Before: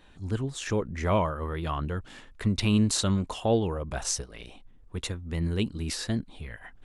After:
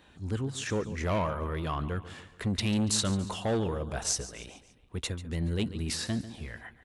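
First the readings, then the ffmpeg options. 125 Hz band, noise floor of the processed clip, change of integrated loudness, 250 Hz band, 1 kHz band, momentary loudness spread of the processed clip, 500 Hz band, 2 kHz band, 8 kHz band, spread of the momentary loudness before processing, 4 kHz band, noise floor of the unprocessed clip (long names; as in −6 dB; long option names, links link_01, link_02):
−3.0 dB, −59 dBFS, −2.5 dB, −3.5 dB, −3.0 dB, 14 LU, −3.5 dB, −1.0 dB, 0.0 dB, 17 LU, −0.5 dB, −53 dBFS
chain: -filter_complex "[0:a]aecho=1:1:142|284|426|568:0.158|0.0777|0.0381|0.0186,acrossover=split=4200[link_01][link_02];[link_01]asoftclip=type=tanh:threshold=-23.5dB[link_03];[link_03][link_02]amix=inputs=2:normalize=0,highpass=56"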